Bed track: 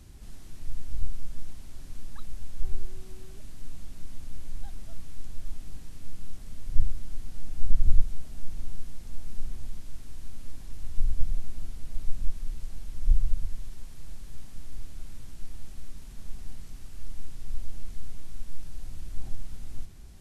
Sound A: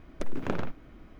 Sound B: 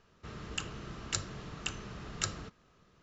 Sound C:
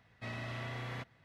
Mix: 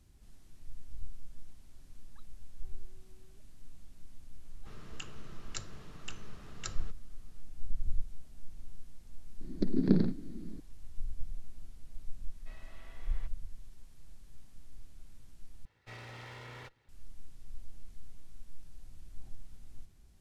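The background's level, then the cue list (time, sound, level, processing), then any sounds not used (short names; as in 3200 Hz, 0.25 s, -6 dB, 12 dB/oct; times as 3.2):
bed track -12.5 dB
4.42 add B -8 dB
9.41 add A -1 dB + EQ curve 120 Hz 0 dB, 180 Hz +14 dB, 400 Hz +5 dB, 570 Hz -8 dB, 1200 Hz -16 dB, 1800 Hz -7 dB, 2900 Hz -18 dB, 4400 Hz +10 dB, 6900 Hz -20 dB
12.24 add C -14.5 dB + HPF 270 Hz
15.65 replace with C -4 dB + minimum comb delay 2.2 ms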